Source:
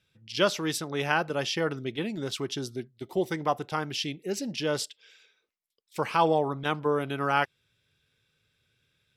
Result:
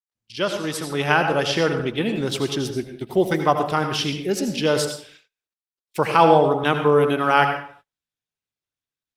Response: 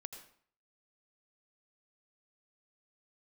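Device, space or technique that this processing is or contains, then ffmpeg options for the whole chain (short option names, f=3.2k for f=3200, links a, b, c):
speakerphone in a meeting room: -filter_complex "[1:a]atrim=start_sample=2205[a];[0:a][a]afir=irnorm=-1:irlink=0,dynaudnorm=f=570:g=3:m=9dB,agate=range=-34dB:threshold=-51dB:ratio=16:detection=peak,volume=4.5dB" -ar 48000 -c:a libopus -b:a 32k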